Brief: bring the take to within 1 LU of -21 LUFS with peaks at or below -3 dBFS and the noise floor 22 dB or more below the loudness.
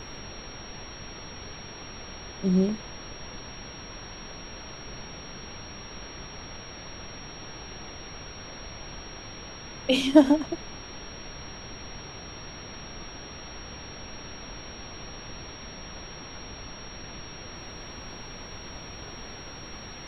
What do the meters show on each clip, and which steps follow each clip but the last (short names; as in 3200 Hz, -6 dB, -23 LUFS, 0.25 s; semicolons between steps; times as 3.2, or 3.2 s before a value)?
steady tone 5600 Hz; tone level -45 dBFS; noise floor -42 dBFS; noise floor target -56 dBFS; loudness -33.5 LUFS; peak -3.0 dBFS; loudness target -21.0 LUFS
-> notch 5600 Hz, Q 30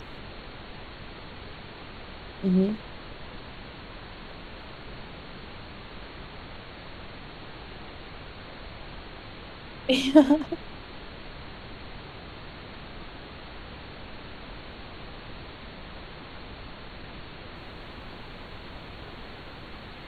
steady tone none; noise floor -44 dBFS; noise floor target -56 dBFS
-> noise print and reduce 12 dB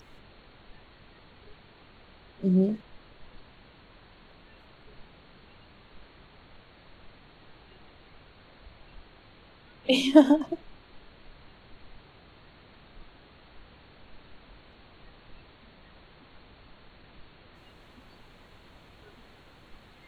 noise floor -56 dBFS; loudness -24.0 LUFS; peak -3.0 dBFS; loudness target -21.0 LUFS
-> gain +3 dB; limiter -3 dBFS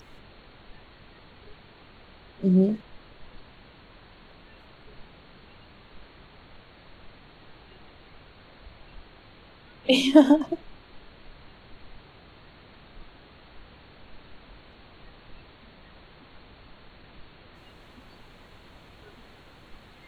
loudness -21.5 LUFS; peak -3.0 dBFS; noise floor -53 dBFS